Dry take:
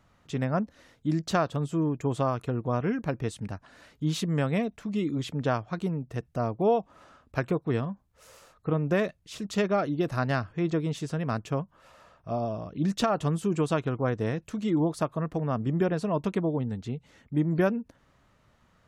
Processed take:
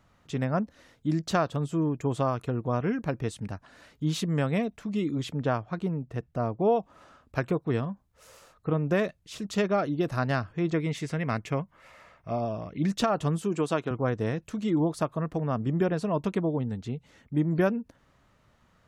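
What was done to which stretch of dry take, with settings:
5.33–6.76 s: treble shelf 4.5 kHz -10 dB
10.74–12.88 s: peaking EQ 2.1 kHz +13.5 dB 0.36 oct
13.42–13.91 s: high-pass 190 Hz

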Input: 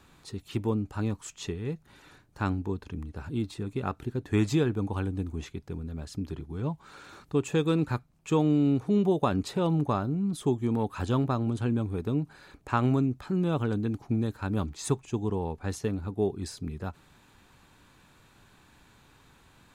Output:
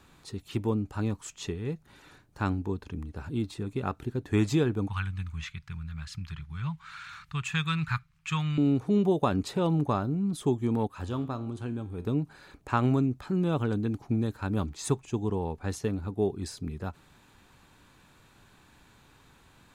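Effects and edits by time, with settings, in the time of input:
4.88–8.58 s: FFT filter 160 Hz 0 dB, 280 Hz -23 dB, 520 Hz -25 dB, 740 Hz -12 dB, 1.2 kHz +5 dB, 2.2 kHz +9 dB, 11 kHz -4 dB
10.87–12.05 s: feedback comb 89 Hz, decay 0.52 s

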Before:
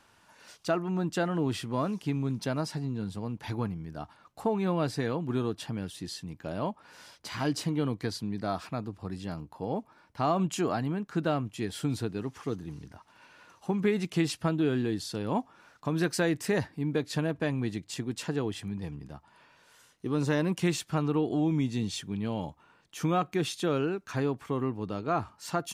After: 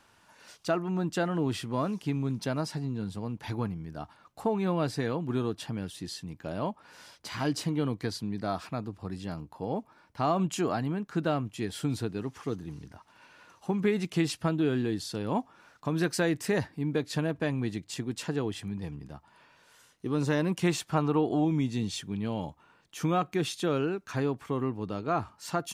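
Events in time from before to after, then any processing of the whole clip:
20.64–21.45 s: peaking EQ 860 Hz +5.5 dB 1.5 oct

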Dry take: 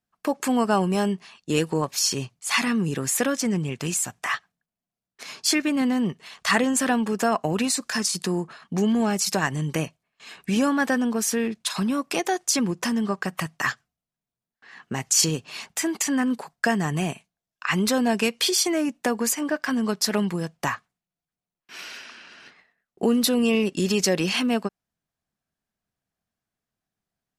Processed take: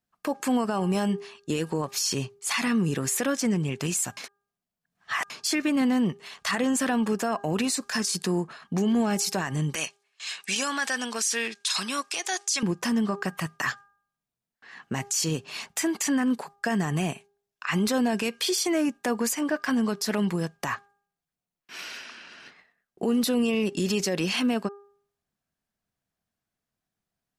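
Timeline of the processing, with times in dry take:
4.17–5.30 s: reverse
9.75–12.63 s: frequency weighting ITU-R 468
whole clip: de-hum 403.4 Hz, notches 4; peak limiter -17 dBFS

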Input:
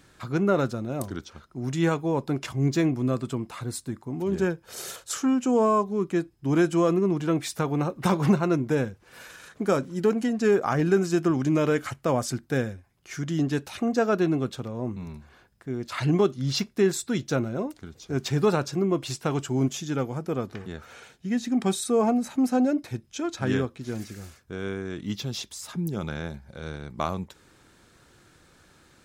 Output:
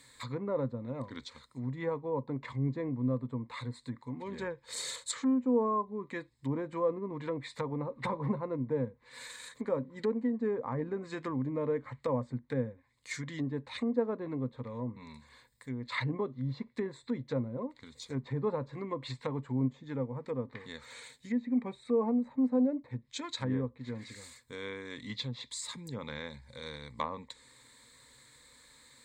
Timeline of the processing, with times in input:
21.37–21.92 s: peaking EQ 2.3 kHz +10 dB 0.29 oct
whole clip: rippled EQ curve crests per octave 1, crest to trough 14 dB; low-pass that closes with the level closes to 770 Hz, closed at -21 dBFS; tilt shelf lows -6.5 dB, about 1.2 kHz; trim -5.5 dB

